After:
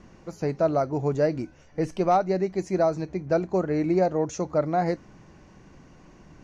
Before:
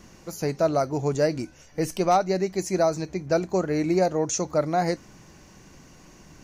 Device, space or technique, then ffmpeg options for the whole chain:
through cloth: -af "lowpass=8200,highshelf=frequency=3400:gain=-14"

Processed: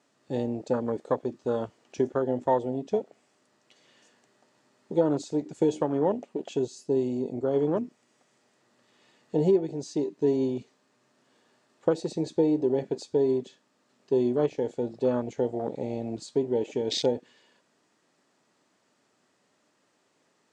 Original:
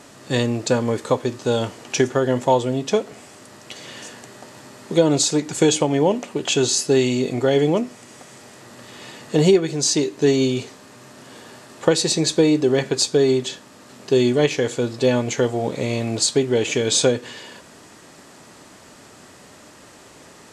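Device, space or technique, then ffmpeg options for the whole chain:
over-cleaned archive recording: -filter_complex "[0:a]highpass=160,lowpass=7800,afwtdn=0.0794,asettb=1/sr,asplit=3[link_01][link_02][link_03];[link_01]atrim=end=6.594[link_04];[link_02]atrim=start=6.59:end=7.54,asetpts=PTS-STARTPTS,afade=type=in:duration=0.004:curve=qsin,afade=type=out:start_time=0.946:duration=0.004:curve=qsin,equalizer=frequency=1800:width_type=o:width=2.8:gain=-6[link_05];[link_03]atrim=start=7.536[link_06];[link_04][link_05]acrossfade=duration=0.004:curve1=hsin:curve2=qsin[link_07];[link_07][link_06]acrossfade=duration=0.004:curve1=qsin:curve2=hsin,volume=-7dB"

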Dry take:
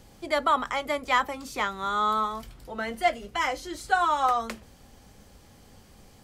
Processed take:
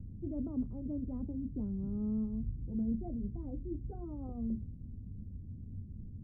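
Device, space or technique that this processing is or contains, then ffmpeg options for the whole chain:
the neighbour's flat through the wall: -af "lowpass=frequency=250:width=0.5412,lowpass=frequency=250:width=1.3066,equalizer=frequency=93:width_type=o:width=0.59:gain=8,volume=7dB"

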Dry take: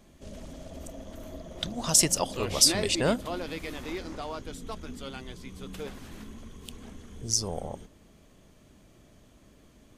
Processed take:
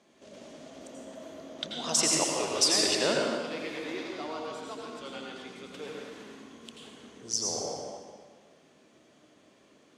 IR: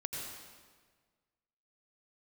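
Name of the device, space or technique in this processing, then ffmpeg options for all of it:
supermarket ceiling speaker: -filter_complex "[0:a]asettb=1/sr,asplit=3[link_01][link_02][link_03];[link_01]atrim=end=2.484[link_04];[link_02]atrim=start=2.48:end=3.44,asetpts=PTS-STARTPTS,afade=type=in:duration=0.004:curve=qsin,afade=type=out:start_time=0.956:duration=0.004:curve=qsin,agate=range=-33dB:threshold=-26dB:ratio=3:detection=peak[link_05];[link_03]atrim=start=3.436[link_06];[link_04][link_05]acrossfade=duration=0.004:curve1=hsin:curve2=qsin[link_07];[link_07][link_06]acrossfade=duration=0.004:curve1=qsin:curve2=hsin,highpass=300,lowpass=6900[link_08];[1:a]atrim=start_sample=2205[link_09];[link_08][link_09]afir=irnorm=-1:irlink=0"

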